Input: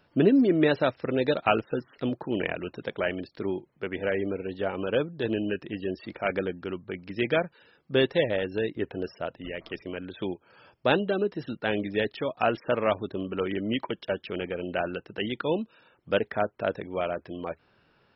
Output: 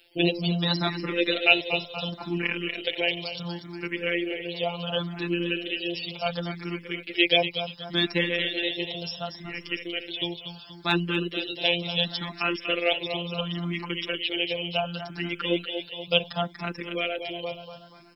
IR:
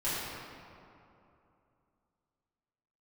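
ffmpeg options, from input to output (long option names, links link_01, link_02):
-filter_complex "[0:a]afftfilt=real='hypot(re,im)*cos(PI*b)':imag='0':win_size=1024:overlap=0.75,acrossover=split=110[link_01][link_02];[link_02]aexciter=amount=8.1:drive=1.9:freq=2400[link_03];[link_01][link_03]amix=inputs=2:normalize=0,lowshelf=frequency=330:gain=2,aecho=1:1:239|478|717|956|1195|1434|1673:0.376|0.207|0.114|0.0625|0.0344|0.0189|0.0104,asplit=2[link_04][link_05];[link_05]afreqshift=0.7[link_06];[link_04][link_06]amix=inputs=2:normalize=1,volume=4.5dB"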